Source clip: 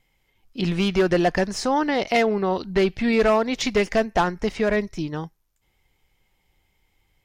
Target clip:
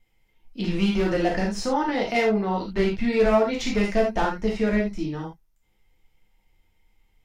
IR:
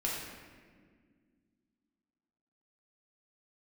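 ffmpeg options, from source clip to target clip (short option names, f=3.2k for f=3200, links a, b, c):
-filter_complex "[0:a]lowshelf=f=420:g=3[a];[1:a]atrim=start_sample=2205,atrim=end_sample=3969[b];[a][b]afir=irnorm=-1:irlink=0,volume=-6.5dB"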